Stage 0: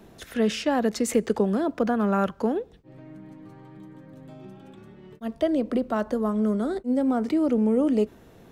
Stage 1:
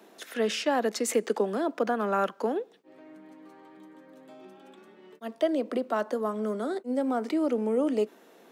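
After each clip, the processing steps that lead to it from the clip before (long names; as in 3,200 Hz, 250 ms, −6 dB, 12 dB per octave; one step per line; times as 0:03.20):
Bessel high-pass filter 370 Hz, order 8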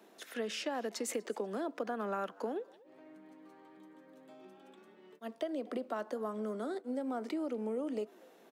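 downward compressor, threshold −27 dBFS, peak gain reduction 7.5 dB
echo with shifted repeats 244 ms, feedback 34%, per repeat +93 Hz, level −24 dB
level −6 dB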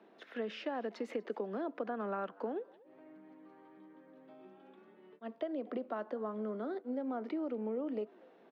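high-frequency loss of the air 320 metres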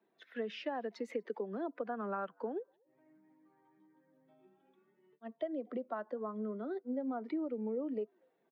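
spectral dynamics exaggerated over time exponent 1.5
level +2 dB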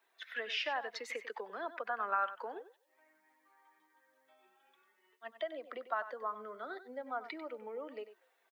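high-pass filter 1,200 Hz 12 dB per octave
single-tap delay 95 ms −13 dB
level +11 dB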